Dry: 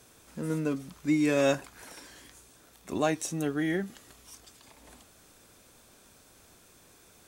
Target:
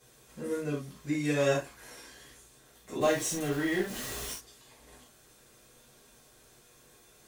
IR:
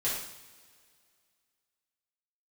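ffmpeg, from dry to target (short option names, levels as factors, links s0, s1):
-filter_complex "[0:a]asettb=1/sr,asplit=3[s0][s1][s2];[s0]atrim=end=3.014[s3];[s1]atrim=start=3.01:end=4.33,asetpts=PTS-STARTPTS,afade=t=in:d=0.004:c=qsin,afade=t=out:st=1.316:d=0.004:c=qsin,aeval=exprs='val(0)+0.5*0.0251*sgn(val(0))':c=same[s4];[s2]atrim=start=4.326[s5];[s3][s4]acrossfade=d=0.004:c1=hsin:c2=qsin[s6];[s6][s5]acrossfade=d=0.004:c1=qsin:c2=hsin[s7];[1:a]atrim=start_sample=2205,afade=t=out:st=0.13:d=0.01,atrim=end_sample=6174[s8];[s7][s8]afir=irnorm=-1:irlink=0,volume=0.447"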